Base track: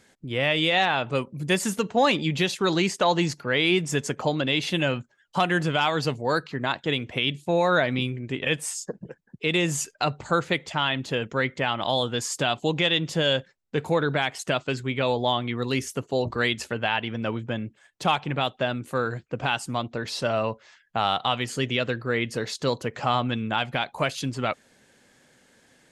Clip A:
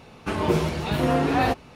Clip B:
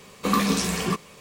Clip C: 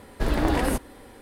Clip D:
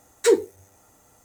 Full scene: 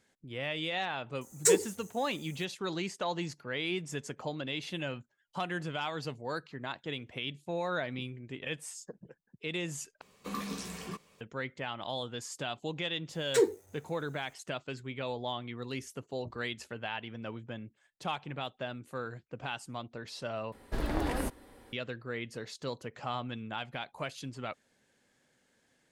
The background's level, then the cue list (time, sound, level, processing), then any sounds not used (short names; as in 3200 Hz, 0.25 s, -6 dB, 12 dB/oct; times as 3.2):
base track -12.5 dB
1.21 add D -8 dB + resonant high shelf 4900 Hz +10 dB, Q 1.5
10.01 replace with B -16 dB
13.1 add D -8 dB
20.52 replace with C -9 dB
not used: A